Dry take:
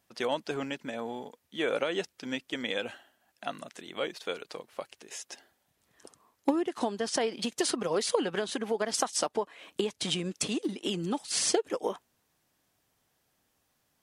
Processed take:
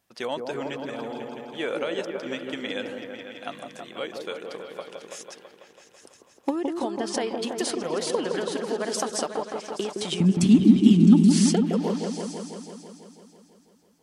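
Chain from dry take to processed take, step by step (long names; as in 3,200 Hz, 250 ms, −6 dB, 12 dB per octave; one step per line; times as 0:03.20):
0:10.20–0:11.28: low shelf with overshoot 340 Hz +12.5 dB, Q 3
echo whose low-pass opens from repeat to repeat 165 ms, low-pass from 750 Hz, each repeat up 1 octave, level −3 dB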